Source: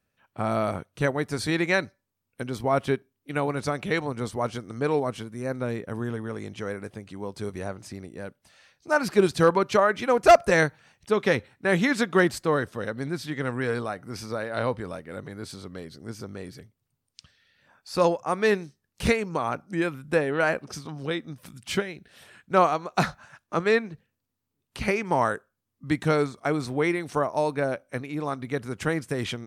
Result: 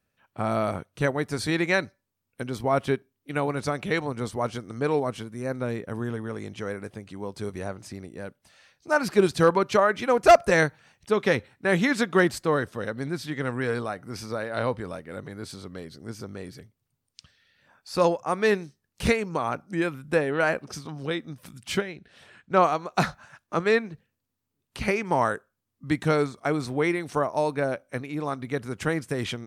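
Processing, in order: 21.81–22.63 air absorption 61 m

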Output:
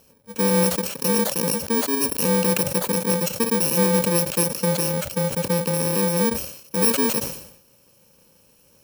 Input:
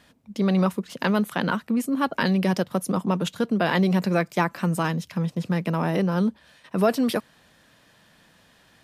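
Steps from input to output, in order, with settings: FFT order left unsorted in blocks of 64 samples; bell 570 Hz +14 dB 0.54 oct; sustainer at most 79 dB/s

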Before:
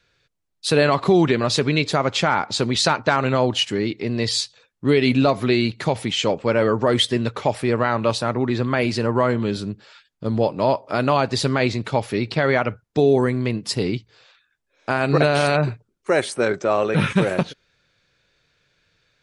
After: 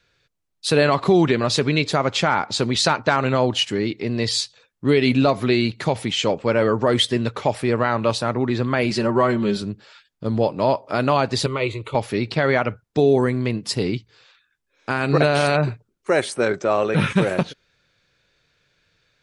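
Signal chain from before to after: 8.9–9.62 comb 5.3 ms, depth 65%; 11.46–11.95 fixed phaser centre 1100 Hz, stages 8; 13.94–15.06 bell 650 Hz -7 dB 0.5 oct

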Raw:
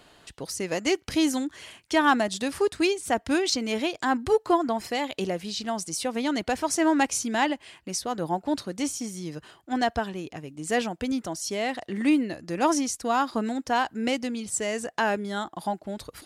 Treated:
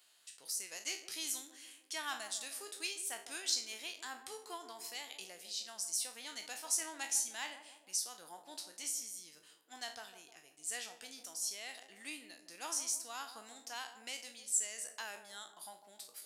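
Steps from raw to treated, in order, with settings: spectral trails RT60 0.34 s; differentiator; on a send: narrowing echo 0.154 s, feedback 59%, band-pass 450 Hz, level -9 dB; on the sum: gain -5.5 dB

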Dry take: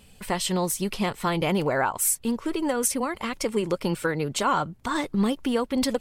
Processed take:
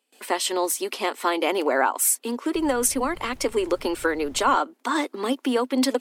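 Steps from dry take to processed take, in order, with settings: gate with hold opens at -41 dBFS; Chebyshev high-pass 250 Hz, order 6; 2.54–4.55 added noise brown -45 dBFS; gain +3.5 dB

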